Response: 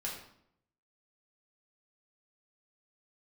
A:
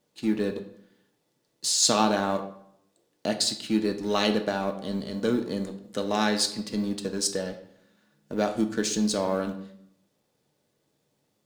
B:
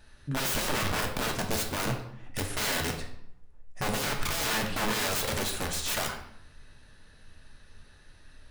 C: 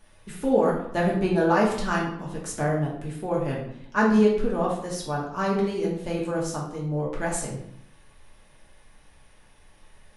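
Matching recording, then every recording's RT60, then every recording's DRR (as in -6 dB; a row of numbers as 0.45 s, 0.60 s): C; 0.70 s, 0.70 s, 0.70 s; 6.0 dB, 1.5 dB, -4.5 dB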